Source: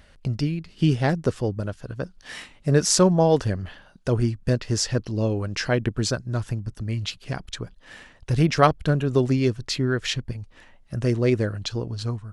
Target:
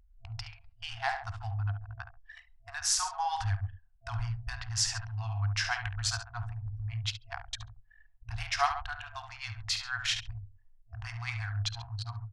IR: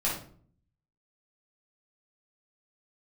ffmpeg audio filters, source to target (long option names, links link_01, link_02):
-filter_complex "[0:a]asplit=2[link_01][link_02];[1:a]atrim=start_sample=2205,atrim=end_sample=3969,asetrate=37485,aresample=44100[link_03];[link_02][link_03]afir=irnorm=-1:irlink=0,volume=-19.5dB[link_04];[link_01][link_04]amix=inputs=2:normalize=0,alimiter=limit=-7.5dB:level=0:latency=1:release=379,aecho=1:1:51|70|137:0.211|0.376|0.211,anlmdn=39.8,afftfilt=real='re*(1-between(b*sr/4096,110,670))':imag='im*(1-between(b*sr/4096,110,670))':win_size=4096:overlap=0.75,volume=-4.5dB"